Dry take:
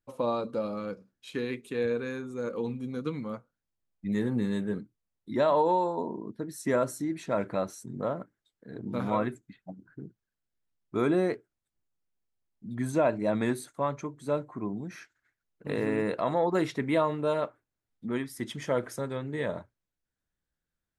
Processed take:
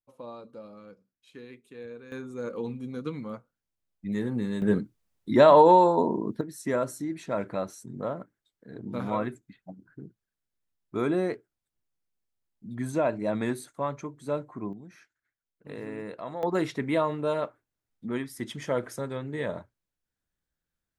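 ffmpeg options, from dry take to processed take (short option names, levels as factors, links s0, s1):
-af "asetnsamples=n=441:p=0,asendcmd='2.12 volume volume -1dB;4.62 volume volume 8.5dB;6.41 volume volume -1dB;14.73 volume volume -9dB;16.43 volume volume 0dB',volume=0.224"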